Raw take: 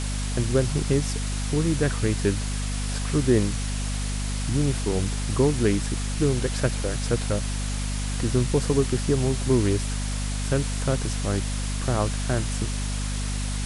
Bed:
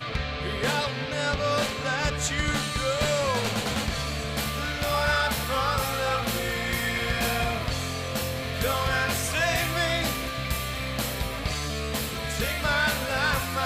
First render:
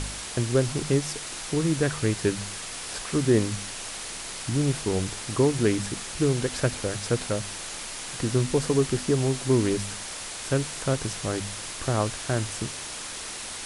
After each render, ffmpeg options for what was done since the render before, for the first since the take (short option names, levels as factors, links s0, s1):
-af "bandreject=f=50:t=h:w=4,bandreject=f=100:t=h:w=4,bandreject=f=150:t=h:w=4,bandreject=f=200:t=h:w=4,bandreject=f=250:t=h:w=4"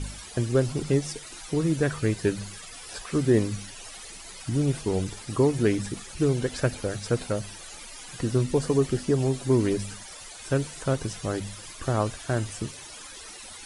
-af "afftdn=nr=14:nf=-37"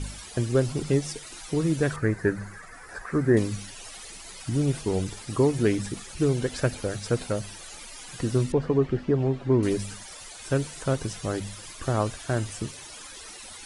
-filter_complex "[0:a]asettb=1/sr,asplit=3[s0][s1][s2];[s0]atrim=end=1.964[s3];[s1]atrim=start=1.96:end=3.37,asetpts=PTS-STARTPTS,afade=t=in:d=0.004:c=qsin,afade=t=out:st=1.406:d=0.004:c=qsin,highshelf=f=2300:t=q:w=3:g=-10[s4];[s2]atrim=start=3.366[s5];[s3][s4]acrossfade=d=0.004:c1=hsin:c2=qsin[s6];[s6][s5]acrossfade=d=0.004:c1=qsin:c2=hsin,asettb=1/sr,asplit=3[s7][s8][s9];[s7]atrim=end=8.524[s10];[s8]atrim=start=8.52:end=9.63,asetpts=PTS-STARTPTS,afade=t=in:d=0.004:c=qsin,afade=t=out:st=1.106:d=0.004:c=qsin,lowpass=2200[s11];[s9]atrim=start=9.626[s12];[s10][s11]acrossfade=d=0.004:c1=hsin:c2=qsin[s13];[s13][s12]acrossfade=d=0.004:c1=qsin:c2=hsin"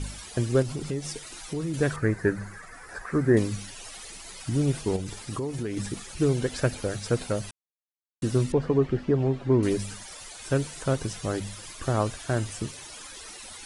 -filter_complex "[0:a]asettb=1/sr,asplit=3[s0][s1][s2];[s0]atrim=end=0.624[s3];[s1]atrim=start=0.62:end=1.74,asetpts=PTS-STARTPTS,afade=t=in:d=0.004:c=qsin,afade=t=out:st=1.116:d=0.004:c=qsin,acompressor=threshold=0.0355:ratio=2.5:attack=3.2:release=140:knee=1:detection=peak[s4];[s2]atrim=start=1.736[s5];[s3][s4]acrossfade=d=0.004:c1=hsin:c2=qsin[s6];[s6][s5]acrossfade=d=0.004:c1=qsin:c2=hsin,asettb=1/sr,asplit=3[s7][s8][s9];[s7]atrim=end=4.964[s10];[s8]atrim=start=4.96:end=5.77,asetpts=PTS-STARTPTS,afade=t=in:d=0.004:c=qsin,afade=t=out:st=0.806:d=0.004:c=qsin,acompressor=threshold=0.0398:ratio=5:attack=3.2:release=140:knee=1:detection=peak[s11];[s9]atrim=start=5.766[s12];[s10][s11]acrossfade=d=0.004:c1=hsin:c2=qsin[s13];[s13][s12]acrossfade=d=0.004:c1=qsin:c2=hsin,asplit=3[s14][s15][s16];[s14]atrim=end=7.51,asetpts=PTS-STARTPTS,afade=t=out:st=7.506:d=0.004:c=hsin[s17];[s15]atrim=start=7.51:end=8.22,asetpts=PTS-STARTPTS,volume=0[s18];[s16]atrim=start=8.22,asetpts=PTS-STARTPTS,afade=t=in:d=0.004:c=hsin[s19];[s17][s18][s19]concat=n=3:v=0:a=1"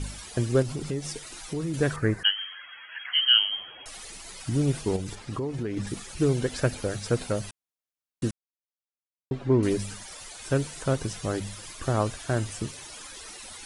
-filter_complex "[0:a]asettb=1/sr,asplit=3[s0][s1][s2];[s0]atrim=end=2.234[s3];[s1]atrim=start=2.23:end=3.86,asetpts=PTS-STARTPTS,afade=t=in:d=0.004:c=qsin,afade=t=out:st=1.626:d=0.004:c=qsin,lowpass=f=2800:t=q:w=0.5098,lowpass=f=2800:t=q:w=0.6013,lowpass=f=2800:t=q:w=0.9,lowpass=f=2800:t=q:w=2.563,afreqshift=-3300[s4];[s2]atrim=start=3.856[s5];[s3][s4]acrossfade=d=0.004:c1=hsin:c2=qsin[s6];[s6][s5]acrossfade=d=0.004:c1=qsin:c2=hsin,asettb=1/sr,asplit=3[s7][s8][s9];[s7]atrim=end=5.154[s10];[s8]atrim=start=5.15:end=5.87,asetpts=PTS-STARTPTS,afade=t=in:d=0.004:c=qsin,afade=t=out:st=0.716:d=0.004:c=qsin,aemphasis=mode=reproduction:type=50fm[s11];[s9]atrim=start=5.866[s12];[s10][s11]acrossfade=d=0.004:c1=hsin:c2=qsin[s13];[s13][s12]acrossfade=d=0.004:c1=qsin:c2=hsin,asplit=3[s14][s15][s16];[s14]atrim=end=8.31,asetpts=PTS-STARTPTS,afade=t=out:st=8.306:d=0.004:c=hsin[s17];[s15]atrim=start=8.31:end=9.31,asetpts=PTS-STARTPTS,volume=0[s18];[s16]atrim=start=9.31,asetpts=PTS-STARTPTS,afade=t=in:d=0.004:c=hsin[s19];[s17][s18][s19]concat=n=3:v=0:a=1"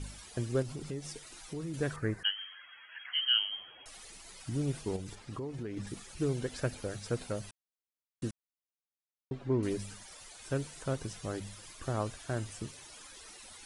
-af "volume=0.376"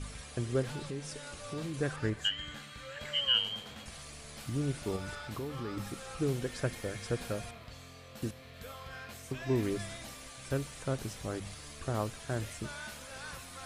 -filter_complex "[1:a]volume=0.0944[s0];[0:a][s0]amix=inputs=2:normalize=0"